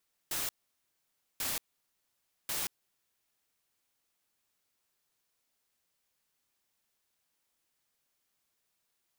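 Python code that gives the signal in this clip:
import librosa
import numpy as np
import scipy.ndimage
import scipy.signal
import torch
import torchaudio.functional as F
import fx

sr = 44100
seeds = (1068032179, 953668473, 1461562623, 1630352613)

y = fx.noise_burst(sr, seeds[0], colour='white', on_s=0.18, off_s=0.91, bursts=3, level_db=-34.5)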